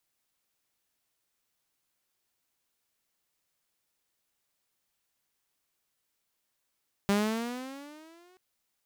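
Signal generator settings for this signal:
pitch glide with a swell saw, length 1.28 s, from 198 Hz, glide +11 semitones, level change −36.5 dB, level −19.5 dB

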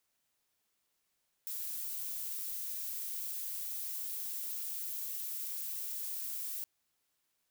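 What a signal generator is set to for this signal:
noise violet, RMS −39.5 dBFS 5.17 s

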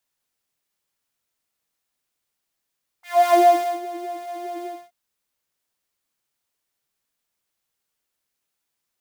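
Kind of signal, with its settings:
subtractive patch with filter wobble F5, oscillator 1 triangle, interval −12 semitones, oscillator 2 level −8 dB, noise −19 dB, filter highpass, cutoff 140 Hz, Q 3, filter envelope 3.5 octaves, filter decay 0.52 s, attack 280 ms, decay 0.49 s, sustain −18 dB, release 0.25 s, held 1.63 s, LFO 4.9 Hz, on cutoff 0.6 octaves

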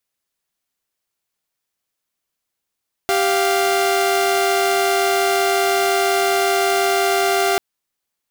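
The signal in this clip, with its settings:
held notes G4/F5 saw, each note −15.5 dBFS 4.49 s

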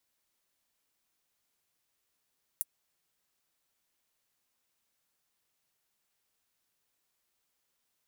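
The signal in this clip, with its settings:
closed synth hi-hat, high-pass 9,900 Hz, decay 0.04 s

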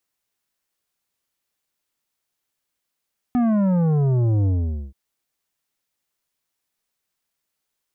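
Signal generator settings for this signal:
bass drop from 250 Hz, over 1.58 s, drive 10 dB, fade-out 0.47 s, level −17 dB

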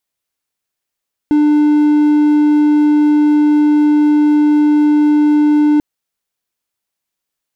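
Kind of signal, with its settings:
tone triangle 298 Hz −5.5 dBFS 4.49 s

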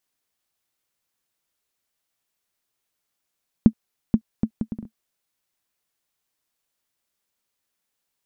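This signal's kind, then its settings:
bouncing ball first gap 0.48 s, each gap 0.61, 221 Hz, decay 73 ms −1.5 dBFS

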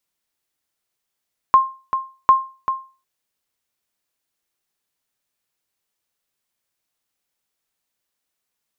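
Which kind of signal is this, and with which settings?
ping with an echo 1,060 Hz, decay 0.34 s, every 0.75 s, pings 2, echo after 0.39 s, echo −9.5 dB −4 dBFS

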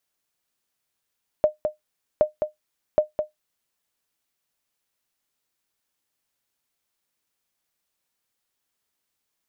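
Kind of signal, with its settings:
ping with an echo 610 Hz, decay 0.14 s, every 0.77 s, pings 3, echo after 0.21 s, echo −6.5 dB −8.5 dBFS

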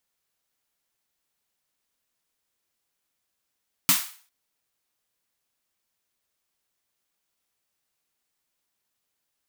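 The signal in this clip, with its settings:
synth snare length 0.40 s, tones 180 Hz, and 270 Hz, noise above 900 Hz, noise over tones 10.5 dB, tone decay 0.16 s, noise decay 0.43 s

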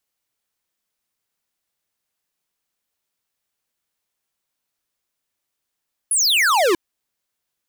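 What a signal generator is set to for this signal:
single falling chirp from 11,000 Hz, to 320 Hz, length 0.64 s square, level −16 dB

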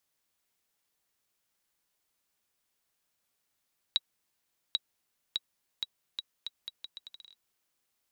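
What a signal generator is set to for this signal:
bouncing ball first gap 0.79 s, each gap 0.77, 3,860 Hz, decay 34 ms −13 dBFS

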